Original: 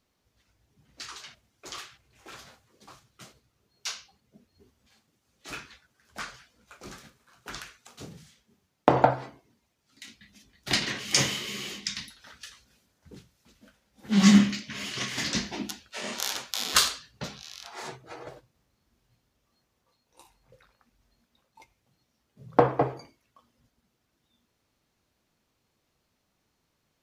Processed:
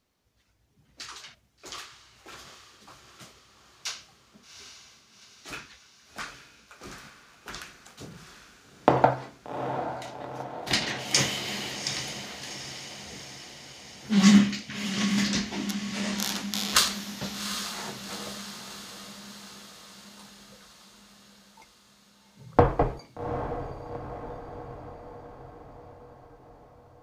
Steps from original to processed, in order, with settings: 22.56–22.99 octaver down 2 oct, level +1 dB; on a send: diffused feedback echo 0.784 s, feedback 59%, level -9 dB

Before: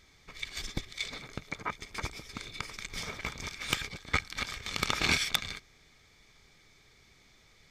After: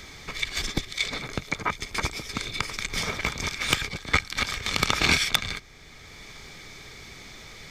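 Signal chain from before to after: three-band squash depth 40%; gain +8.5 dB

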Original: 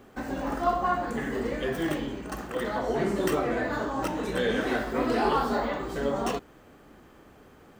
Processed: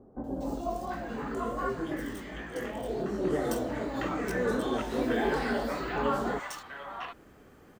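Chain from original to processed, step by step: 0.61–3.21 chorus 2.7 Hz, delay 17.5 ms, depth 5.9 ms; three bands offset in time lows, highs, mids 0.24/0.74 s, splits 850/3300 Hz; gain -1.5 dB

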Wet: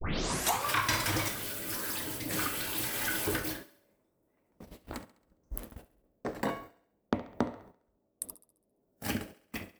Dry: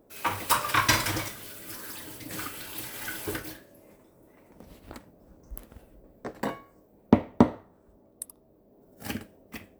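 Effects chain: tape start at the beginning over 0.67 s; gate -48 dBFS, range -22 dB; compressor 4:1, threshold -31 dBFS, peak gain reduction 16 dB; transient shaper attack -4 dB, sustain 0 dB; thinning echo 68 ms, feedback 48%, high-pass 160 Hz, level -16.5 dB; gain +5 dB

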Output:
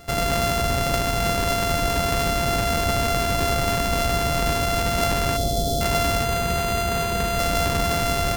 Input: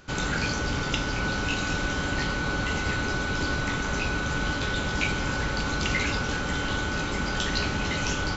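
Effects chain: sample sorter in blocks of 64 samples; 5.37–5.81 spectral delete 800–3100 Hz; in parallel at +2.5 dB: limiter -22.5 dBFS, peak gain reduction 9.5 dB; 6.24–7.39 on the sum: notch comb 290 Hz; on a send at -15.5 dB: reverb RT60 2.5 s, pre-delay 41 ms

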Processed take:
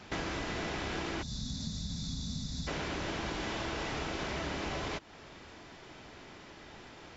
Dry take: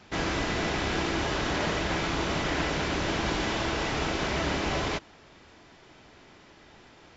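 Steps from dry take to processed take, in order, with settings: spectral gain 1.23–2.68, 270–3400 Hz -26 dB; compressor 4:1, threshold -38 dBFS, peak gain reduction 11.5 dB; gain +2.5 dB

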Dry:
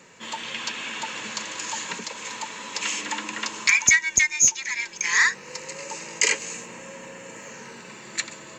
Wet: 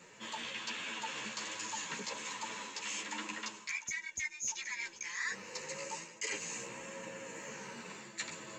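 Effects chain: reverse; compressor 5:1, threshold -32 dBFS, peak gain reduction 18 dB; reverse; chorus voices 2, 1.2 Hz, delay 12 ms, depth 3 ms; gain -2.5 dB

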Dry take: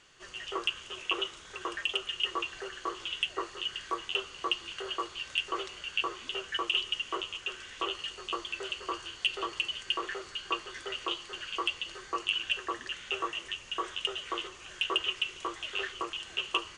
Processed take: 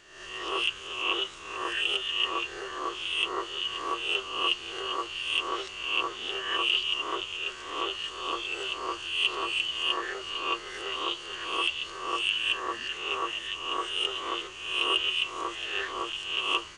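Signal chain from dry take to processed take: spectral swells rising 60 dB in 0.79 s

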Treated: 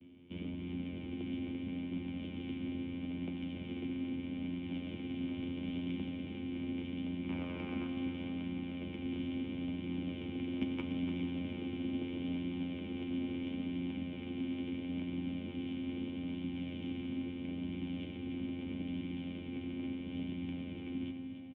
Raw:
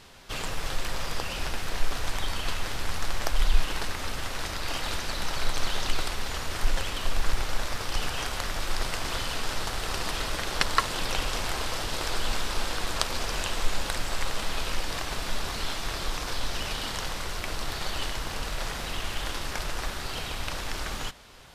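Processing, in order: 7.28–7.86 bell 1100 Hz +14 dB 1.6 oct; vocoder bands 8, saw 87.9 Hz; flange 0.76 Hz, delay 8.1 ms, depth 2.5 ms, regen -42%; vocal tract filter i; in parallel at -9 dB: soft clip -40 dBFS, distortion -20 dB; on the sum: feedback echo 0.292 s, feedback 45%, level -9 dB; on a send at -6 dB: reverb RT60 3.6 s, pre-delay 7 ms; on the sum: gain +6 dB

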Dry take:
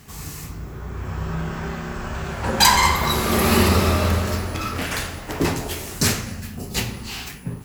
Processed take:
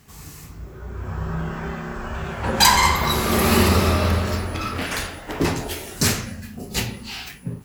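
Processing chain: spectral noise reduction 6 dB

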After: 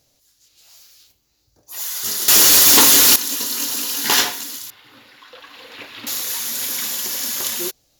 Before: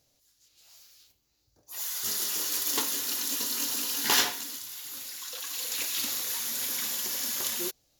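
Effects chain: 2.28–3.16 sample leveller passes 5; 4.7–6.07 air absorption 420 m; gain +7.5 dB

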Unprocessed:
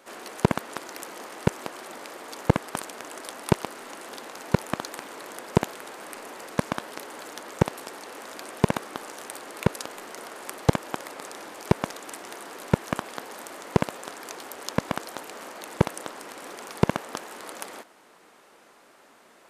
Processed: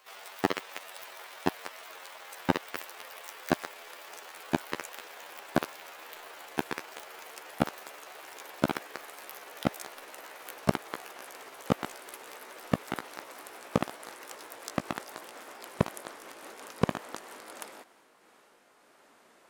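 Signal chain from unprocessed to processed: gliding pitch shift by +11.5 st ending unshifted; gain -5 dB

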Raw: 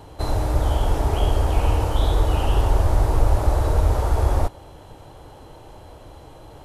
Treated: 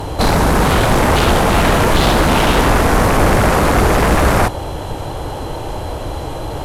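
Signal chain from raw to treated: in parallel at -4.5 dB: sine folder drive 20 dB, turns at -4.5 dBFS; on the sum: gain -1 dB

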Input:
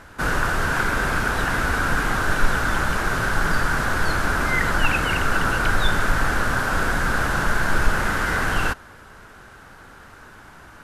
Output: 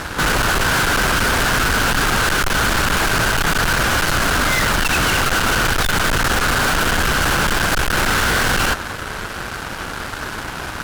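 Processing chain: added harmonics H 7 -27 dB, 8 -27 dB, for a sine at -4.5 dBFS; fuzz box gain 42 dB, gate -50 dBFS; gain -2.5 dB

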